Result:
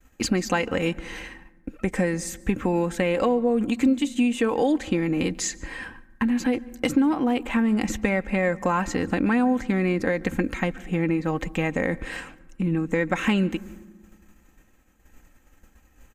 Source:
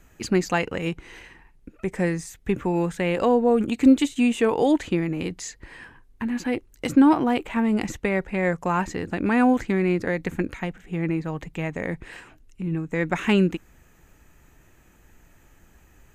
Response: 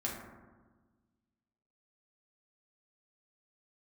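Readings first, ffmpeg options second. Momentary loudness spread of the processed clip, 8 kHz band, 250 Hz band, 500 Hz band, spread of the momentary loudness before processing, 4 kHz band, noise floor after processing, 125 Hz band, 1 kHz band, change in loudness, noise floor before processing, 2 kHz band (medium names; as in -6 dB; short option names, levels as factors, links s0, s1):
13 LU, +4.5 dB, -1.0 dB, -1.0 dB, 14 LU, +1.5 dB, -59 dBFS, -0.5 dB, -1.5 dB, -1.0 dB, -56 dBFS, +1.0 dB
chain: -filter_complex "[0:a]agate=range=0.0224:threshold=0.00562:ratio=3:detection=peak,aecho=1:1:3.8:0.47,acompressor=threshold=0.0447:ratio=4,asplit=2[s0][s1];[1:a]atrim=start_sample=2205,adelay=139[s2];[s1][s2]afir=irnorm=-1:irlink=0,volume=0.0596[s3];[s0][s3]amix=inputs=2:normalize=0,volume=2.11"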